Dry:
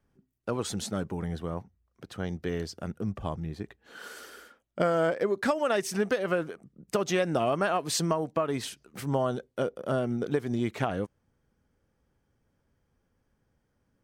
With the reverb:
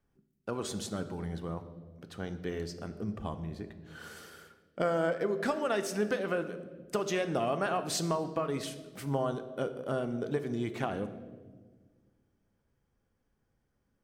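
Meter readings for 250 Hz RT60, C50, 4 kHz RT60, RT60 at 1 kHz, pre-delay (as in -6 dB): 2.2 s, 12.0 dB, 1.0 s, 1.2 s, 3 ms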